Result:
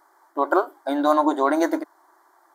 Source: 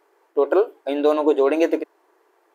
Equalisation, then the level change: static phaser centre 1.1 kHz, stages 4; +7.5 dB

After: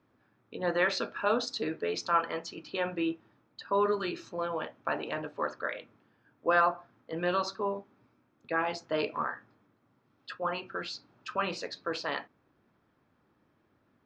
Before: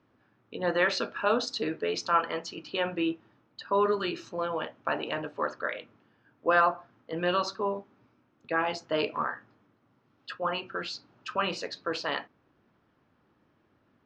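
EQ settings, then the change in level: band-stop 2.9 kHz, Q 16; -2.0 dB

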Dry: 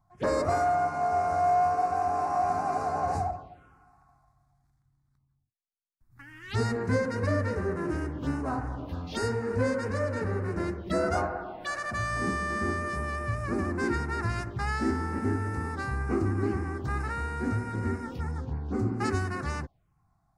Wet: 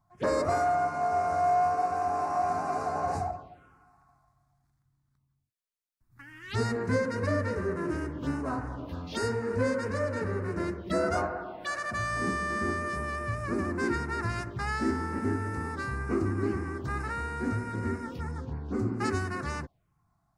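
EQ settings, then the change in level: bass shelf 79 Hz -7 dB; band-stop 780 Hz, Q 12; 0.0 dB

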